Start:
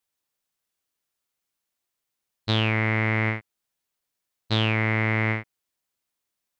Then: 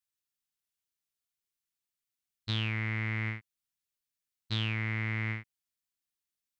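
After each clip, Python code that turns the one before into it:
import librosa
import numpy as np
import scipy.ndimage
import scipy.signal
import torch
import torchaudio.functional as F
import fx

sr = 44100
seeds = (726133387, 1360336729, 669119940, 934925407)

y = fx.peak_eq(x, sr, hz=600.0, db=-13.5, octaves=1.8)
y = y * 10.0 ** (-7.0 / 20.0)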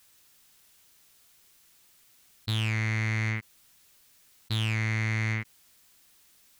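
y = fx.leveller(x, sr, passes=2)
y = fx.env_flatten(y, sr, amount_pct=50)
y = y * 10.0 ** (-1.5 / 20.0)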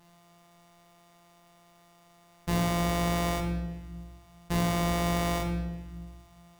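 y = np.r_[np.sort(x[:len(x) // 256 * 256].reshape(-1, 256), axis=1).ravel(), x[len(x) // 256 * 256:]]
y = fx.room_shoebox(y, sr, seeds[0], volume_m3=790.0, walls='mixed', distance_m=1.4)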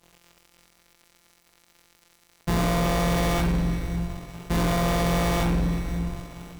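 y = fx.octave_divider(x, sr, octaves=2, level_db=-4.0)
y = fx.leveller(y, sr, passes=5)
y = fx.echo_heads(y, sr, ms=184, heads='second and third', feedback_pct=44, wet_db=-17)
y = y * 10.0 ** (-5.0 / 20.0)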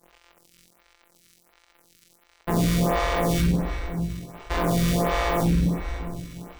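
y = fx.stagger_phaser(x, sr, hz=1.4)
y = y * 10.0 ** (4.0 / 20.0)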